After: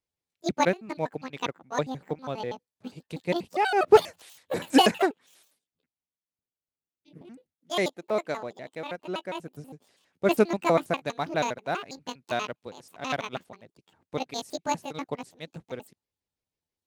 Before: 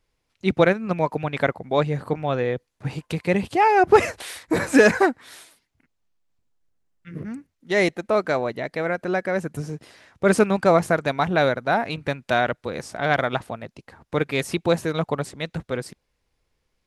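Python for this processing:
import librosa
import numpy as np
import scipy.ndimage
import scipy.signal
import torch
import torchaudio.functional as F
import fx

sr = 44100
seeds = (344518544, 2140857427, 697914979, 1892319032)

p1 = fx.pitch_trill(x, sr, semitones=9.5, every_ms=81)
p2 = np.sign(p1) * np.maximum(np.abs(p1) - 10.0 ** (-31.5 / 20.0), 0.0)
p3 = p1 + (p2 * librosa.db_to_amplitude(-10.0))
p4 = fx.highpass(p3, sr, hz=140.0, slope=6)
p5 = fx.peak_eq(p4, sr, hz=1400.0, db=-5.5, octaves=1.6)
p6 = fx.upward_expand(p5, sr, threshold_db=-33.0, expansion=1.5)
y = p6 * librosa.db_to_amplitude(-1.5)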